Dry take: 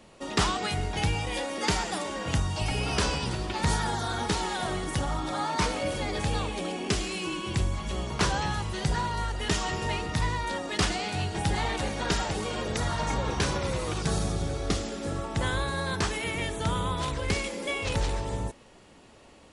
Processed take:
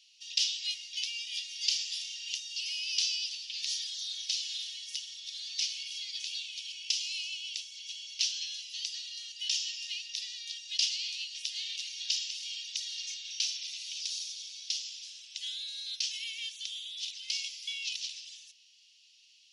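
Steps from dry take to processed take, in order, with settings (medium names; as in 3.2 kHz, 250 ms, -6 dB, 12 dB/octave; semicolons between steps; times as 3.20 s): elliptic high-pass 2.8 kHz, stop band 60 dB; resonant high shelf 6.9 kHz -8 dB, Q 3; 1.86–2.36 s: flutter echo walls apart 5.6 m, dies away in 0.29 s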